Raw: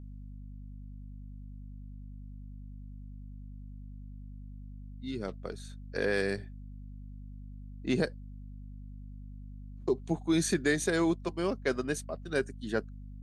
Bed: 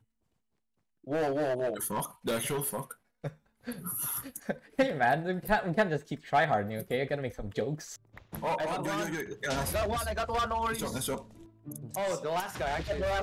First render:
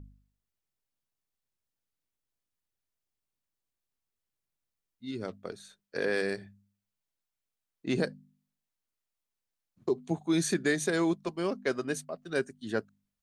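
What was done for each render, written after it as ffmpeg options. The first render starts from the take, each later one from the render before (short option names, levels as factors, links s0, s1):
-af "bandreject=f=50:t=h:w=4,bandreject=f=100:t=h:w=4,bandreject=f=150:t=h:w=4,bandreject=f=200:t=h:w=4,bandreject=f=250:t=h:w=4"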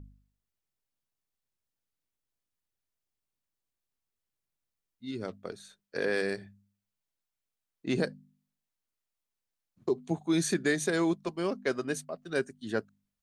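-af anull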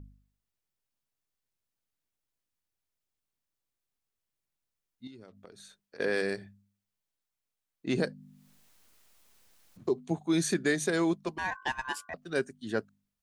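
-filter_complex "[0:a]asettb=1/sr,asplit=3[s0][s1][s2];[s0]atrim=end=5.074[s3];[s1]atrim=start=5.07:end=6,asetpts=PTS-STARTPTS,afade=t=in:d=0.004:c=qsin,afade=t=out:st=0.926:d=0.004:c=qsin,acompressor=threshold=0.00501:ratio=12:attack=3.2:release=140:knee=1:detection=peak[s4];[s2]atrim=start=5.996[s5];[s3][s4]acrossfade=d=0.004:c1=hsin:c2=qsin[s6];[s6][s5]acrossfade=d=0.004:c1=qsin:c2=hsin,asettb=1/sr,asplit=3[s7][s8][s9];[s7]atrim=end=7.894[s10];[s8]atrim=start=7.89:end=10.01,asetpts=PTS-STARTPTS,afade=t=in:d=0.004:c=qsin,afade=t=out:st=2.116:d=0.004:c=qsin,acompressor=mode=upward:threshold=0.00891:ratio=2.5:attack=3.2:release=140:knee=2.83:detection=peak[s11];[s9]atrim=start=10.006[s12];[s10][s11]acrossfade=d=0.004:c1=hsin:c2=qsin[s13];[s13][s12]acrossfade=d=0.004:c1=qsin:c2=hsin,asettb=1/sr,asplit=3[s14][s15][s16];[s14]atrim=end=11.384[s17];[s15]atrim=start=11.38:end=12.14,asetpts=PTS-STARTPTS,afade=t=in:d=0.004:c=qsin,afade=t=out:st=0.756:d=0.004:c=qsin,aeval=exprs='val(0)*sin(2*PI*1300*n/s)':c=same[s18];[s16]atrim=start=12.136[s19];[s17][s18]acrossfade=d=0.004:c1=hsin:c2=qsin[s20];[s20][s19]acrossfade=d=0.004:c1=qsin:c2=hsin"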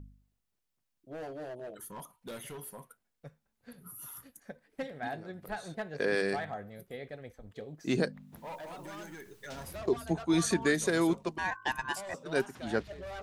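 -filter_complex "[1:a]volume=0.251[s0];[0:a][s0]amix=inputs=2:normalize=0"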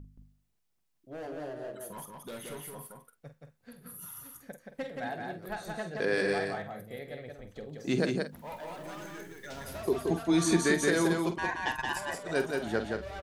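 -filter_complex "[0:a]asplit=2[s0][s1];[s1]adelay=47,volume=0.316[s2];[s0][s2]amix=inputs=2:normalize=0,aecho=1:1:175:0.668"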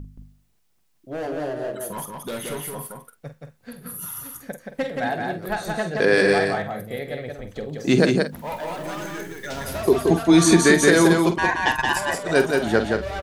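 -af "volume=3.76,alimiter=limit=0.794:level=0:latency=1"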